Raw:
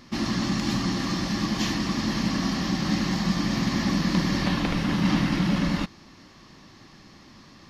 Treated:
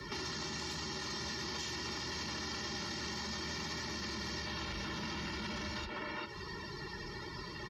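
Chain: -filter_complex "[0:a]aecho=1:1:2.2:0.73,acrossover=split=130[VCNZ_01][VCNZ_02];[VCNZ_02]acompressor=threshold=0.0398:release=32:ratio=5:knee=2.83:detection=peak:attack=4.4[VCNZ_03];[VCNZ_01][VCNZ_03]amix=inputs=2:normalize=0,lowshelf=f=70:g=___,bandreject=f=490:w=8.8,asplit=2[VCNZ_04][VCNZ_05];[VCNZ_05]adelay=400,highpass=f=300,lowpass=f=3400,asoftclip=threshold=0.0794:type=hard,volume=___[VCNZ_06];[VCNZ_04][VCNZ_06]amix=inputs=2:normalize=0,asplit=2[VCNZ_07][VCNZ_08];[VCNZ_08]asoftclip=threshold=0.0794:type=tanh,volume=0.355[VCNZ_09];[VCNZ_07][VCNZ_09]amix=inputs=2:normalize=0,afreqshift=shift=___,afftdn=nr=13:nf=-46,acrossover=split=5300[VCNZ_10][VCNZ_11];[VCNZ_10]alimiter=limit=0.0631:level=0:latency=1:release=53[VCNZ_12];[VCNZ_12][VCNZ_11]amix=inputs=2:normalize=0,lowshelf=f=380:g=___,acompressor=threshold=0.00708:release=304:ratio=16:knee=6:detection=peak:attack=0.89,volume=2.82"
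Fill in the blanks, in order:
2.5, 0.282, 33, -7.5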